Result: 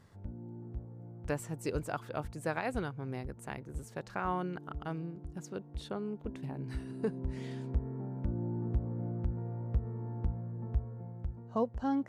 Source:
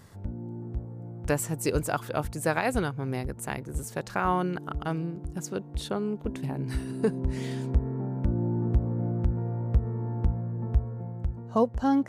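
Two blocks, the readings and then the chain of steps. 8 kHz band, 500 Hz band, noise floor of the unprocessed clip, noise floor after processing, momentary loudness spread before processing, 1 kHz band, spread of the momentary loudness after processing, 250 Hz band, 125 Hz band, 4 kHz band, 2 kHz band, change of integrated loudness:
-14.5 dB, -8.0 dB, -44 dBFS, -53 dBFS, 9 LU, -8.0 dB, 9 LU, -8.0 dB, -8.0 dB, -10.0 dB, -8.5 dB, -8.0 dB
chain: high shelf 7400 Hz -11.5 dB; gain -8 dB

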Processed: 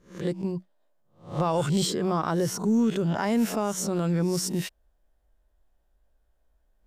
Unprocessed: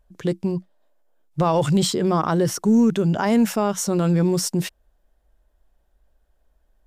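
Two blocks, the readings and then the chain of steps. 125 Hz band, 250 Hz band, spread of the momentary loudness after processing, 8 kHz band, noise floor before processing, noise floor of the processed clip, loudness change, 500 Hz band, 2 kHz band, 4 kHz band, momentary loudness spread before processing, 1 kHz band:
-6.0 dB, -6.0 dB, 9 LU, -4.5 dB, -66 dBFS, -69 dBFS, -6.0 dB, -6.0 dB, -4.5 dB, -4.5 dB, 10 LU, -5.5 dB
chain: spectral swells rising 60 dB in 0.38 s; gain -6.5 dB

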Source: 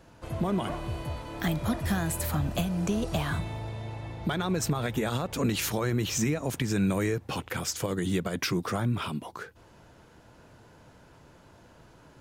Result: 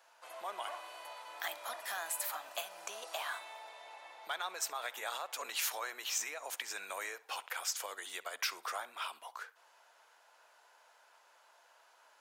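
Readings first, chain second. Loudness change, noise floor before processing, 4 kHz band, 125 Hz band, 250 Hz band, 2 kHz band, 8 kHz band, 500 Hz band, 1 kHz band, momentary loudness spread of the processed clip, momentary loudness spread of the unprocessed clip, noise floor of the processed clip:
-9.5 dB, -56 dBFS, -4.5 dB, under -40 dB, -37.0 dB, -4.5 dB, -4.0 dB, -14.5 dB, -5.0 dB, 12 LU, 9 LU, -66 dBFS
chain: HPF 700 Hz 24 dB/oct; high shelf 12000 Hz +3.5 dB; tape echo 64 ms, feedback 38%, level -19 dB, low-pass 4800 Hz; gain -4.5 dB

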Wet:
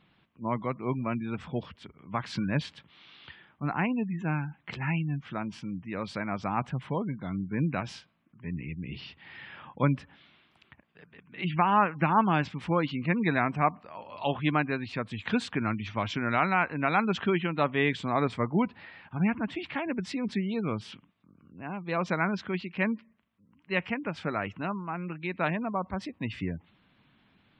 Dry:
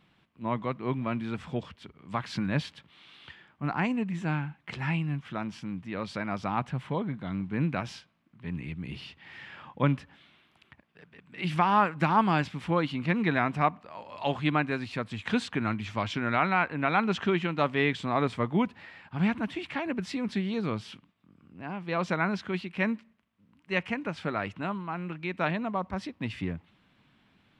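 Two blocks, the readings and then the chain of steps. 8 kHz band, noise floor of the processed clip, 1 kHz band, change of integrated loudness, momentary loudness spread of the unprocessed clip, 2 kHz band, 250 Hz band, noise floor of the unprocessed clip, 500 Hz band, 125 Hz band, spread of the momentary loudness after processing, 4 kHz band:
n/a, -66 dBFS, 0.0 dB, 0.0 dB, 13 LU, 0.0 dB, 0.0 dB, -66 dBFS, 0.0 dB, 0.0 dB, 13 LU, -1.5 dB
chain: spectral gate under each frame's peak -30 dB strong

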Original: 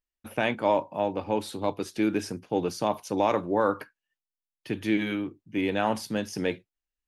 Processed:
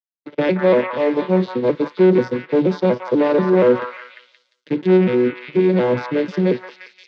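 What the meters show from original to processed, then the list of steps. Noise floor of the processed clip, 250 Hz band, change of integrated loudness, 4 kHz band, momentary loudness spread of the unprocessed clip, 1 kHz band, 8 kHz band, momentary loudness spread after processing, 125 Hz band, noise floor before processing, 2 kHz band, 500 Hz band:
-71 dBFS, +11.0 dB, +11.0 dB, +2.0 dB, 7 LU, +2.5 dB, under -10 dB, 7 LU, +14.5 dB, under -85 dBFS, +6.0 dB, +12.5 dB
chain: arpeggiated vocoder minor triad, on B2, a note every 0.241 s; sample leveller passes 3; bell 2100 Hz +3 dB 0.23 oct; gate with hold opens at -49 dBFS; speaker cabinet 170–4900 Hz, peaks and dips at 210 Hz +4 dB, 360 Hz +5 dB, 510 Hz +9 dB, 730 Hz -8 dB, 1200 Hz -4 dB, 3700 Hz +4 dB; on a send: delay with a stepping band-pass 0.175 s, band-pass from 1300 Hz, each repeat 0.7 oct, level 0 dB; on the sum: gain +1.5 dB

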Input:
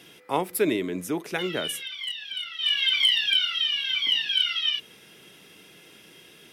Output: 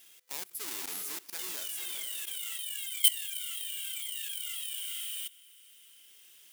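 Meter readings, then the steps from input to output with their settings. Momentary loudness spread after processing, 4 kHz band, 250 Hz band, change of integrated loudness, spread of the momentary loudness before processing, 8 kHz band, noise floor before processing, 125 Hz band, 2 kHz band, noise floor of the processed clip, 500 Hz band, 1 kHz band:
12 LU, -14.0 dB, under -25 dB, -9.0 dB, 12 LU, +6.0 dB, -52 dBFS, n/a, -16.0 dB, -57 dBFS, under -25 dB, -18.5 dB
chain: half-waves squared off; pre-emphasis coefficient 0.97; diffused feedback echo 0.452 s, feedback 42%, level -9 dB; level quantiser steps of 19 dB

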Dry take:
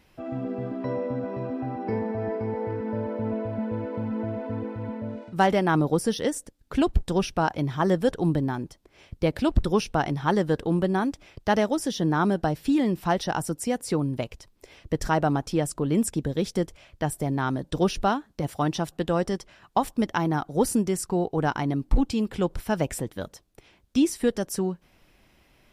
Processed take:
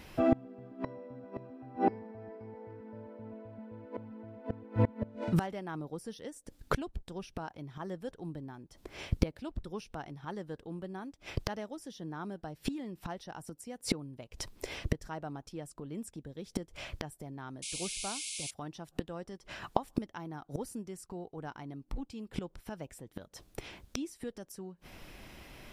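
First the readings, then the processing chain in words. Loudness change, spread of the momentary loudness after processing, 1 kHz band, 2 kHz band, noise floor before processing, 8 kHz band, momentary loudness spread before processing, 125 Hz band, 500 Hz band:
-13.0 dB, 15 LU, -13.0 dB, -12.5 dB, -62 dBFS, -8.0 dB, 8 LU, -11.0 dB, -13.5 dB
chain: painted sound noise, 17.62–18.51, 2100–11000 Hz -22 dBFS; flipped gate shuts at -24 dBFS, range -27 dB; gain +9 dB

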